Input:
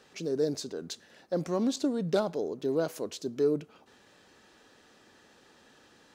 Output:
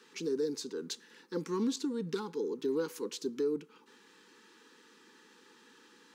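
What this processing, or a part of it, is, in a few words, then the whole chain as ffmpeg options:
PA system with an anti-feedback notch: -af "highpass=frequency=190:width=0.5412,highpass=frequency=190:width=1.3066,asuperstop=centerf=650:order=20:qfactor=2.1,alimiter=limit=-24dB:level=0:latency=1:release=403"

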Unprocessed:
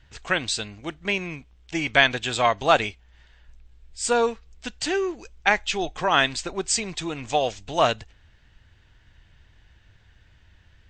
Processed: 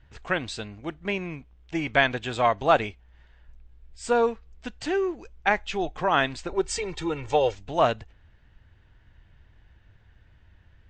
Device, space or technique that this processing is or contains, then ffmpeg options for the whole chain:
through cloth: -filter_complex "[0:a]highshelf=frequency=2900:gain=-14,asettb=1/sr,asplit=3[link_01][link_02][link_03];[link_01]atrim=end=6.514[link_04];[link_02]atrim=start=6.51:end=7.55,asetpts=PTS-STARTPTS,afade=type=in:duration=0.004:curve=qsin,afade=type=out:start_time=1.036:duration=0.004:curve=qsin,aecho=1:1:2.2:0.98,atrim=end_sample=45864[link_05];[link_03]atrim=start=7.546[link_06];[link_04][link_05]acrossfade=duration=0.004:curve1=hsin:curve2=qsin[link_07];[link_07][link_06]acrossfade=duration=0.004:curve1=qsin:curve2=hsin"

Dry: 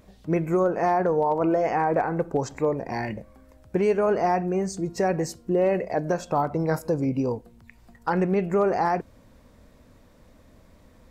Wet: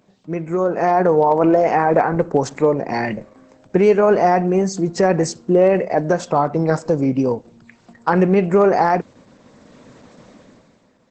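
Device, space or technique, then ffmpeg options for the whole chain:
video call: -af "highpass=frequency=130:width=0.5412,highpass=frequency=130:width=1.3066,dynaudnorm=framelen=110:gausssize=13:maxgain=16dB,volume=-1.5dB" -ar 48000 -c:a libopus -b:a 12k

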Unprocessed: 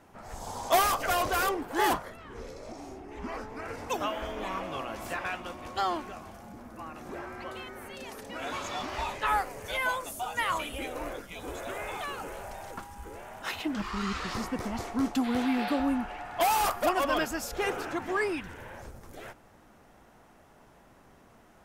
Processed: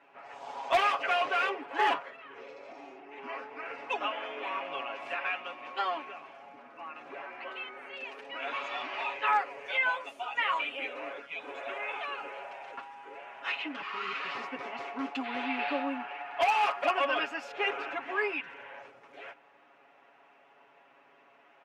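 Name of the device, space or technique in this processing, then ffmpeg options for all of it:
megaphone: -af "highpass=460,lowpass=2700,equalizer=frequency=2600:width_type=o:width=0.58:gain=10.5,aecho=1:1:7.2:0.84,asoftclip=type=hard:threshold=-14.5dB,volume=-3.5dB"

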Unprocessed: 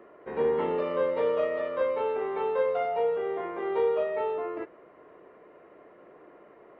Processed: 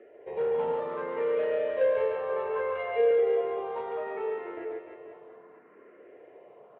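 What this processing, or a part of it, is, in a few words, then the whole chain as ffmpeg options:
barber-pole phaser into a guitar amplifier: -filter_complex "[0:a]asplit=2[link_01][link_02];[link_02]afreqshift=0.66[link_03];[link_01][link_03]amix=inputs=2:normalize=1,asoftclip=type=tanh:threshold=-26.5dB,highpass=97,equalizer=frequency=170:width_type=q:width=4:gain=-4,equalizer=frequency=310:width_type=q:width=4:gain=-5,equalizer=frequency=450:width_type=q:width=4:gain=4,equalizer=frequency=1200:width_type=q:width=4:gain=-5,lowpass=frequency=3400:width=0.5412,lowpass=frequency=3400:width=1.3066,asettb=1/sr,asplit=3[link_04][link_05][link_06];[link_04]atrim=end=1.814[link_07];[link_05]atrim=start=1.81:end=3.11,asetpts=PTS-STARTPTS,afade=type=in:duration=0.004:curve=qsin,afade=type=out:start_time=1.296:duration=0.004:curve=qsin,aecho=1:1:1.8:0.96,atrim=end_sample=57330[link_08];[link_06]atrim=start=3.106[link_09];[link_07][link_08]acrossfade=duration=0.004:curve1=hsin:curve2=qsin[link_10];[link_10][link_09]acrossfade=duration=0.004:curve1=qsin:curve2=hsin,aecho=1:1:140|301|486.2|699.1|943.9:0.631|0.398|0.251|0.158|0.1"

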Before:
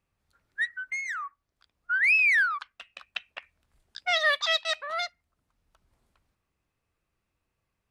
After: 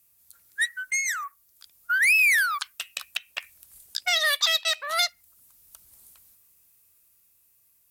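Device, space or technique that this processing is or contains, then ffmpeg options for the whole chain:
FM broadcast chain: -filter_complex "[0:a]highpass=41,dynaudnorm=framelen=300:gausssize=11:maxgain=4dB,acrossover=split=3400|7100[link_01][link_02][link_03];[link_01]acompressor=threshold=-23dB:ratio=4[link_04];[link_02]acompressor=threshold=-41dB:ratio=4[link_05];[link_03]acompressor=threshold=-60dB:ratio=4[link_06];[link_04][link_05][link_06]amix=inputs=3:normalize=0,aemphasis=mode=production:type=75fm,alimiter=limit=-16.5dB:level=0:latency=1:release=288,asoftclip=type=hard:threshold=-18dB,lowpass=frequency=15000:width=0.5412,lowpass=frequency=15000:width=1.3066,aemphasis=mode=production:type=75fm"

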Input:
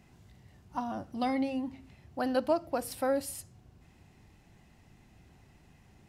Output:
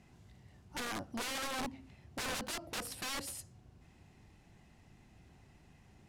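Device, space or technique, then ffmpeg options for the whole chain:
overflowing digital effects unit: -af "aeval=exprs='(mod(37.6*val(0)+1,2)-1)/37.6':channel_layout=same,lowpass=12000,volume=-2dB"

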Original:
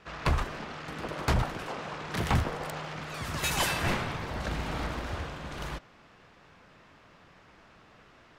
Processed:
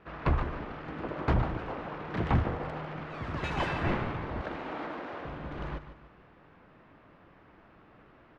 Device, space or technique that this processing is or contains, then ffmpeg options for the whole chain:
phone in a pocket: -filter_complex "[0:a]asettb=1/sr,asplit=3[link_01][link_02][link_03];[link_01]atrim=end=4.414[link_04];[link_02]atrim=start=4.41:end=5.25,asetpts=PTS-STARTPTS,afade=type=in:duration=0.004:curve=qsin,afade=type=out:start_time=0.836:duration=0.004:curve=qsin,highpass=320[link_05];[link_03]atrim=start=5.246[link_06];[link_04][link_05]acrossfade=duration=0.004:curve1=hsin:curve2=qsin[link_07];[link_07][link_06]acrossfade=duration=0.004:curve1=qsin:curve2=hsin,lowpass=3200,equalizer=frequency=310:width_type=o:width=0.51:gain=4,highshelf=frequency=2500:gain=-10.5,aecho=1:1:148|296|444|592:0.251|0.1|0.0402|0.0161"

